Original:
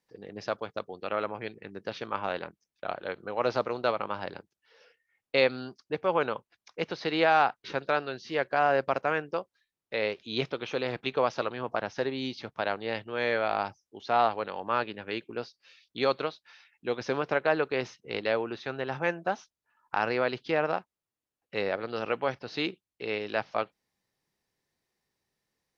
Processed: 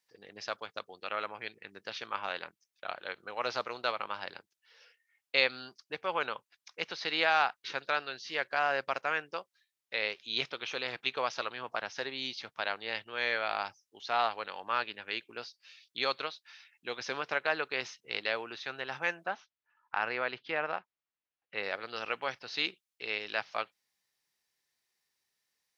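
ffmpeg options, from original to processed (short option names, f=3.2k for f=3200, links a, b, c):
-filter_complex "[0:a]asplit=3[a][b][c];[a]afade=t=out:st=19.25:d=0.02[d];[b]lowpass=2.7k,afade=t=in:st=19.25:d=0.02,afade=t=out:st=21.62:d=0.02[e];[c]afade=t=in:st=21.62:d=0.02[f];[d][e][f]amix=inputs=3:normalize=0,tiltshelf=f=840:g=-9,volume=-5.5dB"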